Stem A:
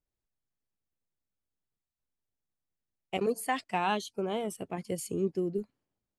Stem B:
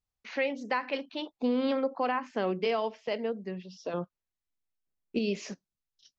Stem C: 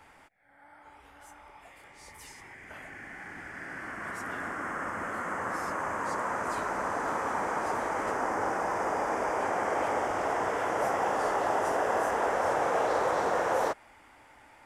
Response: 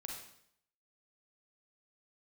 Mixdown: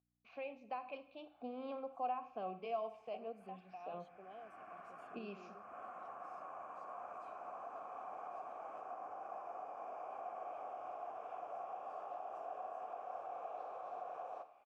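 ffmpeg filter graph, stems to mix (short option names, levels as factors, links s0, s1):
-filter_complex "[0:a]aeval=exprs='val(0)+0.00224*(sin(2*PI*60*n/s)+sin(2*PI*2*60*n/s)/2+sin(2*PI*3*60*n/s)/3+sin(2*PI*4*60*n/s)/4+sin(2*PI*5*60*n/s)/5)':c=same,volume=0.335[s0];[1:a]lowshelf=f=210:g=11.5,volume=0.447,asplit=3[s1][s2][s3];[s2]volume=0.501[s4];[2:a]acompressor=threshold=0.0282:ratio=3,adelay=700,volume=0.631,asplit=2[s5][s6];[s6]volume=0.376[s7];[s3]apad=whole_len=676995[s8];[s5][s8]sidechaincompress=threshold=0.00708:ratio=8:attack=9.3:release=472[s9];[s0][s9]amix=inputs=2:normalize=0,alimiter=level_in=2.99:limit=0.0631:level=0:latency=1:release=376,volume=0.335,volume=1[s10];[3:a]atrim=start_sample=2205[s11];[s4][s7]amix=inputs=2:normalize=0[s12];[s12][s11]afir=irnorm=-1:irlink=0[s13];[s1][s10][s13]amix=inputs=3:normalize=0,asplit=3[s14][s15][s16];[s14]bandpass=f=730:t=q:w=8,volume=1[s17];[s15]bandpass=f=1090:t=q:w=8,volume=0.501[s18];[s16]bandpass=f=2440:t=q:w=8,volume=0.355[s19];[s17][s18][s19]amix=inputs=3:normalize=0,bass=f=250:g=9,treble=f=4000:g=2"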